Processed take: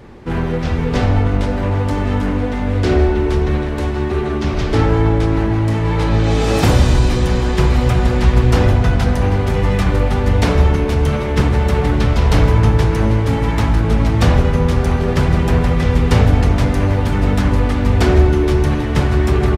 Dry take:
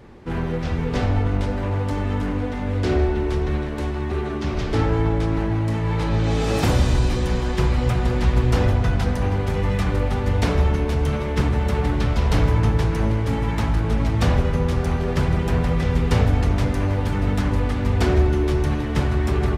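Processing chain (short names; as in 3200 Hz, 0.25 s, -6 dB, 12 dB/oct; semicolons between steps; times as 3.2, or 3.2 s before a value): echo 1.119 s -17 dB; on a send at -20.5 dB: reverb RT60 0.55 s, pre-delay 0.13 s; on the sum: gain +6 dB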